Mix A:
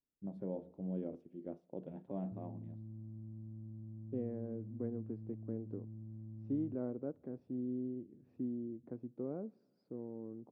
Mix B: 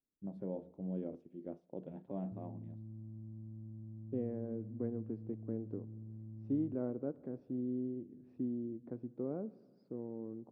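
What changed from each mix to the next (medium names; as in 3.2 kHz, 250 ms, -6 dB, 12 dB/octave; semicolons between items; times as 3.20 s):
second voice: send +11.5 dB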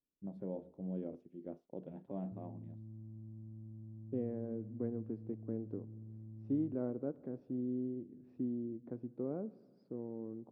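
first voice: send off; background: send off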